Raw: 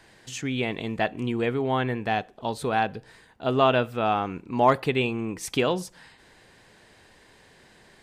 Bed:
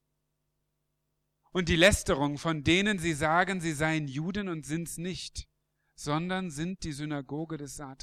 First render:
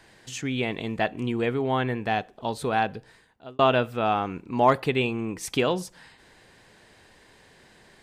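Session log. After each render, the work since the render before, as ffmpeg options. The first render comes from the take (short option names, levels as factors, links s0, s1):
-filter_complex "[0:a]asplit=2[s0][s1];[s0]atrim=end=3.59,asetpts=PTS-STARTPTS,afade=t=out:st=2.92:d=0.67[s2];[s1]atrim=start=3.59,asetpts=PTS-STARTPTS,afade=t=in:d=0.004:c=hsin[s3];[s2][s3]concat=n=2:v=0:a=1"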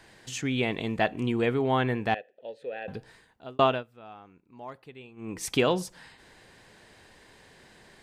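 -filter_complex "[0:a]asettb=1/sr,asplit=3[s0][s1][s2];[s0]atrim=end=2.144[s3];[s1]atrim=start=2.14:end=2.88,asetpts=PTS-STARTPTS,afade=t=in:d=0.004:c=qsin,afade=t=out:st=0.736:d=0.004:c=qsin,asplit=3[s4][s5][s6];[s4]bandpass=f=530:t=q:w=8,volume=1[s7];[s5]bandpass=f=1840:t=q:w=8,volume=0.501[s8];[s6]bandpass=f=2480:t=q:w=8,volume=0.355[s9];[s7][s8][s9]amix=inputs=3:normalize=0[s10];[s2]atrim=start=2.876[s11];[s3][s10]acrossfade=d=0.004:c1=hsin:c2=qsin[s12];[s12][s11]acrossfade=d=0.004:c1=qsin:c2=hsin,asplit=3[s13][s14][s15];[s13]atrim=end=3.84,asetpts=PTS-STARTPTS,afade=t=out:st=3.59:d=0.25:silence=0.0749894[s16];[s14]atrim=start=3.84:end=5.16,asetpts=PTS-STARTPTS,volume=0.075[s17];[s15]atrim=start=5.16,asetpts=PTS-STARTPTS,afade=t=in:d=0.25:silence=0.0749894[s18];[s16][s17][s18]concat=n=3:v=0:a=1"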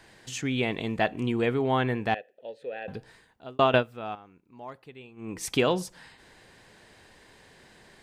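-filter_complex "[0:a]asplit=3[s0][s1][s2];[s0]atrim=end=3.742[s3];[s1]atrim=start=3.738:end=4.152,asetpts=PTS-STARTPTS,volume=3.55[s4];[s2]atrim=start=4.148[s5];[s3][s4]acrossfade=d=0.004:c1=hsin:c2=hsin[s6];[s6][s5]acrossfade=d=0.004:c1=hsin:c2=hsin"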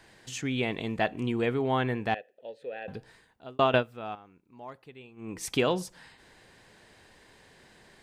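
-af "volume=0.794"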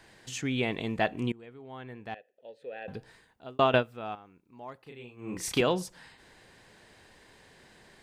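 -filter_complex "[0:a]asettb=1/sr,asplit=3[s0][s1][s2];[s0]atrim=end=4.834[s3];[s1]atrim=start=4.83:end=5.61,asetpts=PTS-STARTPTS,afade=t=in:d=0.004:c=qsin,afade=t=out:st=0.776:d=0.004:c=qsin,asplit=2[s4][s5];[s5]adelay=33,volume=0.794[s6];[s4][s6]amix=inputs=2:normalize=0,atrim=end_sample=34398[s7];[s2]atrim=start=5.606[s8];[s3][s7]acrossfade=d=0.004:c1=hsin:c2=qsin[s9];[s9][s8]acrossfade=d=0.004:c1=qsin:c2=hsin,asplit=2[s10][s11];[s10]atrim=end=1.32,asetpts=PTS-STARTPTS,afade=t=out:st=1.316:d=0.004:c=hsin:silence=0.0794328[s12];[s11]atrim=start=1.32,asetpts=PTS-STARTPTS,afade=t=in:d=1.66:c=qua:silence=0.0794328[s13];[s12][s13]concat=n=2:v=0:a=1"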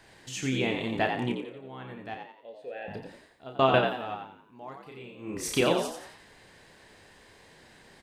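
-filter_complex "[0:a]asplit=2[s0][s1];[s1]adelay=30,volume=0.447[s2];[s0][s2]amix=inputs=2:normalize=0,asplit=2[s3][s4];[s4]asplit=5[s5][s6][s7][s8][s9];[s5]adelay=88,afreqshift=64,volume=0.501[s10];[s6]adelay=176,afreqshift=128,volume=0.2[s11];[s7]adelay=264,afreqshift=192,volume=0.0804[s12];[s8]adelay=352,afreqshift=256,volume=0.032[s13];[s9]adelay=440,afreqshift=320,volume=0.0129[s14];[s10][s11][s12][s13][s14]amix=inputs=5:normalize=0[s15];[s3][s15]amix=inputs=2:normalize=0"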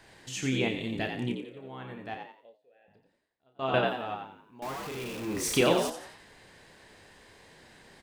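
-filter_complex "[0:a]asettb=1/sr,asplit=3[s0][s1][s2];[s0]atrim=end=0.684[s3];[s1]atrim=start=0.68:end=1.57,asetpts=PTS-STARTPTS,afade=t=in:d=0.004:c=qsin,afade=t=out:st=0.886:d=0.004:c=qsin,equalizer=f=960:t=o:w=1.6:g=-12.5[s4];[s2]atrim=start=1.566[s5];[s3][s4]acrossfade=d=0.004:c1=hsin:c2=qsin[s6];[s6][s5]acrossfade=d=0.004:c1=qsin:c2=hsin,asettb=1/sr,asplit=3[s7][s8][s9];[s7]atrim=end=4.624[s10];[s8]atrim=start=4.62:end=5.9,asetpts=PTS-STARTPTS,afade=t=in:d=0.004:c=qsin,afade=t=out:st=1.276:d=0.004:c=qsin,aeval=exprs='val(0)+0.5*0.0178*sgn(val(0))':c=same[s11];[s9]atrim=start=5.896[s12];[s10][s11]acrossfade=d=0.004:c1=hsin:c2=qsin[s13];[s13][s12]acrossfade=d=0.004:c1=qsin:c2=hsin,asplit=3[s14][s15][s16];[s14]atrim=end=2.58,asetpts=PTS-STARTPTS,afade=t=out:st=2.27:d=0.31:silence=0.0630957[s17];[s15]atrim=start=2.58:end=3.56,asetpts=PTS-STARTPTS,volume=0.0631[s18];[s16]atrim=start=3.56,asetpts=PTS-STARTPTS,afade=t=in:d=0.31:silence=0.0630957[s19];[s17][s18][s19]concat=n=3:v=0:a=1"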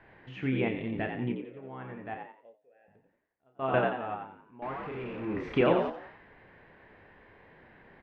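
-af "lowpass=f=2300:w=0.5412,lowpass=f=2300:w=1.3066"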